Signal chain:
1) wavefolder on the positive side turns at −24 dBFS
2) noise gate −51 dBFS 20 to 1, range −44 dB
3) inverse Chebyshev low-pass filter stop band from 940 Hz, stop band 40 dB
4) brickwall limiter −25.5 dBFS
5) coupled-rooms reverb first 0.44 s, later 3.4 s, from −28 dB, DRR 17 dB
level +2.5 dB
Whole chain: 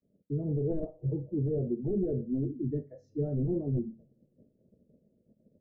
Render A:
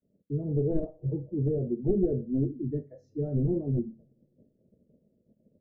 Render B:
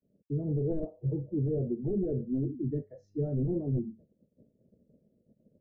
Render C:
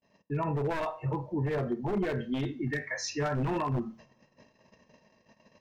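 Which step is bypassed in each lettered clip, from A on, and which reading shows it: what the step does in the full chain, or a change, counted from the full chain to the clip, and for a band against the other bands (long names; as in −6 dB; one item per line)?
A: 4, change in crest factor +6.5 dB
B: 5, change in crest factor −1.5 dB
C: 3, change in momentary loudness spread −1 LU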